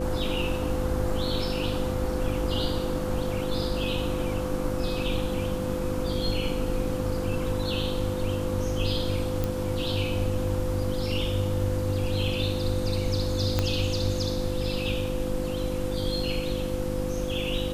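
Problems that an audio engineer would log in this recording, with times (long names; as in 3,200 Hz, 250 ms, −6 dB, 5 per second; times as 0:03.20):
mains hum 50 Hz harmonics 7 −33 dBFS
whistle 510 Hz −31 dBFS
0:09.44: click
0:13.59: click −10 dBFS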